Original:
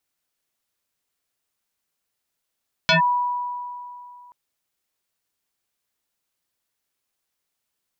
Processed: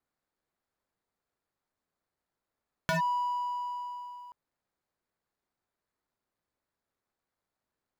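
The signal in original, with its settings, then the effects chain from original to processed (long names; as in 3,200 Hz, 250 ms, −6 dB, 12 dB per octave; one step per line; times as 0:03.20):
two-operator FM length 1.43 s, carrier 979 Hz, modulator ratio 0.83, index 4.8, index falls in 0.12 s linear, decay 2.65 s, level −12.5 dB
running median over 15 samples
downward compressor 2 to 1, threshold −35 dBFS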